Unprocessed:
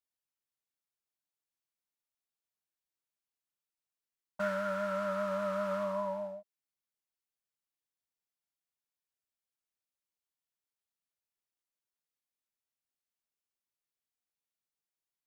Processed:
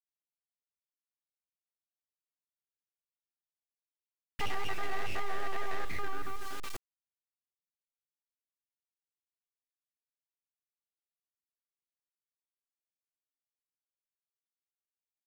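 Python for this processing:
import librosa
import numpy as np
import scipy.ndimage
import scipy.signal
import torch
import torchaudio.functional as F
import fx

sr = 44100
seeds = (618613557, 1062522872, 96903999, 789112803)

p1 = fx.spec_dropout(x, sr, seeds[0], share_pct=27)
p2 = scipy.signal.sosfilt(scipy.signal.butter(4, 140.0, 'highpass', fs=sr, output='sos'), p1)
p3 = fx.hum_notches(p2, sr, base_hz=60, count=6)
p4 = np.abs(p3)
p5 = p4 + fx.echo_single(p4, sr, ms=377, db=-18.5, dry=0)
p6 = fx.room_shoebox(p5, sr, seeds[1], volume_m3=640.0, walls='furnished', distance_m=0.4)
p7 = fx.quant_dither(p6, sr, seeds[2], bits=10, dither='none')
y = fx.env_flatten(p7, sr, amount_pct=70)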